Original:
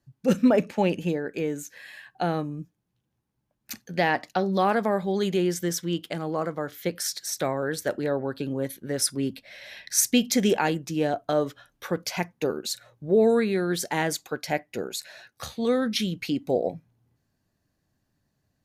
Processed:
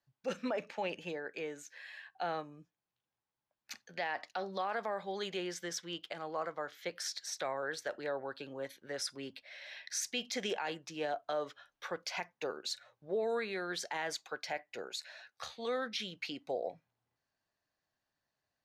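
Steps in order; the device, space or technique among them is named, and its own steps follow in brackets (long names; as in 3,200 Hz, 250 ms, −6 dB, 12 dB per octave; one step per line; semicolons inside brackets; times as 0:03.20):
DJ mixer with the lows and highs turned down (three-way crossover with the lows and the highs turned down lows −17 dB, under 520 Hz, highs −18 dB, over 6,400 Hz; brickwall limiter −21.5 dBFS, peak gain reduction 9 dB)
level −5 dB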